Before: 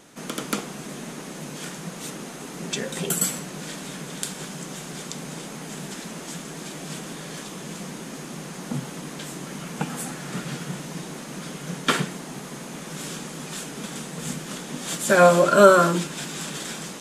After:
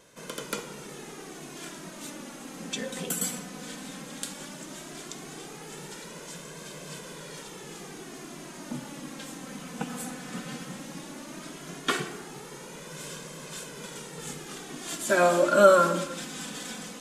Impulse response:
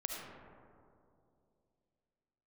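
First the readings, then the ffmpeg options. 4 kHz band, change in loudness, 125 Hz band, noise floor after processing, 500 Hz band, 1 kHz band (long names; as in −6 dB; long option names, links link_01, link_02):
−5.0 dB, −4.5 dB, −9.5 dB, −44 dBFS, −4.5 dB, −5.0 dB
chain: -filter_complex "[0:a]flanger=delay=1.9:depth=2.1:regen=19:speed=0.15:shape=sinusoidal,asplit=2[link_01][link_02];[1:a]atrim=start_sample=2205,afade=type=out:start_time=0.39:duration=0.01,atrim=end_sample=17640[link_03];[link_02][link_03]afir=irnorm=-1:irlink=0,volume=-9dB[link_04];[link_01][link_04]amix=inputs=2:normalize=0,volume=-4dB"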